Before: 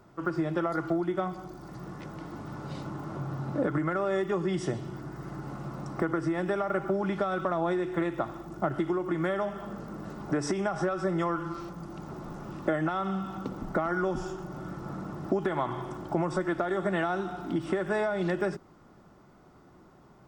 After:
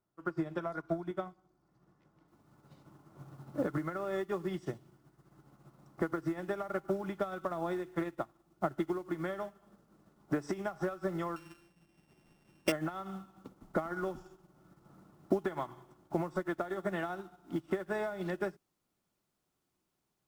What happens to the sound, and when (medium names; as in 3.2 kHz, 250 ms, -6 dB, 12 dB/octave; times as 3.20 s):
0.58–1.11 s: rippled EQ curve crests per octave 1.6, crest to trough 7 dB
2.28 s: noise floor step -68 dB -56 dB
11.36–12.72 s: sorted samples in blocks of 16 samples
whole clip: treble shelf 12 kHz -4.5 dB; upward expansion 2.5:1, over -42 dBFS